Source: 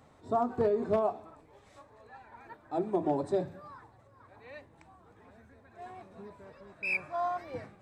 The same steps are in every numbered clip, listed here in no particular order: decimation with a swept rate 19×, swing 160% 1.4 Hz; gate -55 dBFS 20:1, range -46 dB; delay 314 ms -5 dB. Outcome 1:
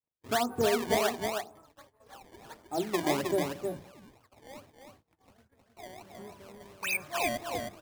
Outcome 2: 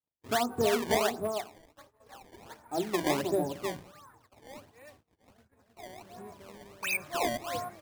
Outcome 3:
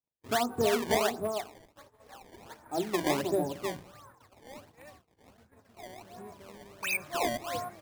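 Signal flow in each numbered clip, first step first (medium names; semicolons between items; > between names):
gate > decimation with a swept rate > delay; gate > delay > decimation with a swept rate; delay > gate > decimation with a swept rate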